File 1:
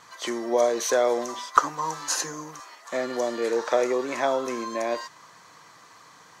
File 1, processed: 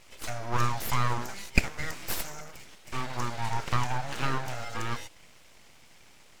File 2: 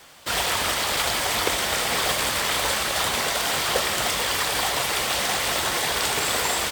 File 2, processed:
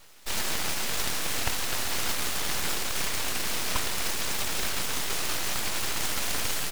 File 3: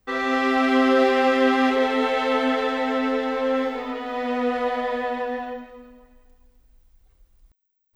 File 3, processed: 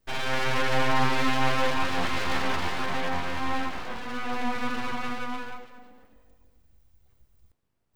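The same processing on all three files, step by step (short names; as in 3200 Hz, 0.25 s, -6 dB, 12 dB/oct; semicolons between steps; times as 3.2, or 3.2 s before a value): full-wave rectifier; gain -2.5 dB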